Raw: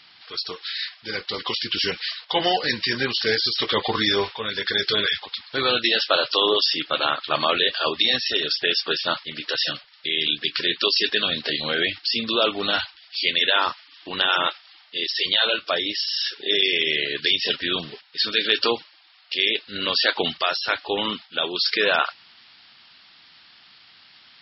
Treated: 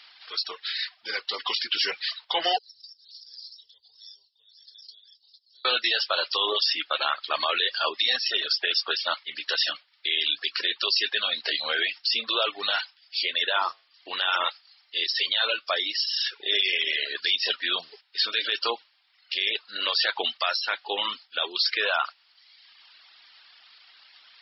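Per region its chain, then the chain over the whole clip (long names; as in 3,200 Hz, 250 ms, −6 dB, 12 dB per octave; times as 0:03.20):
0:02.58–0:05.65: inverse Chebyshev band-stop filter 140–2,500 Hz, stop band 50 dB + high-frequency loss of the air 190 metres + background raised ahead of every attack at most 70 dB per second
0:13.22–0:14.09: parametric band 460 Hz +6 dB 2.4 octaves + tuned comb filter 52 Hz, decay 0.39 s, harmonics odd, mix 40%
whole clip: high-pass filter 620 Hz 12 dB per octave; reverb reduction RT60 0.99 s; brickwall limiter −13 dBFS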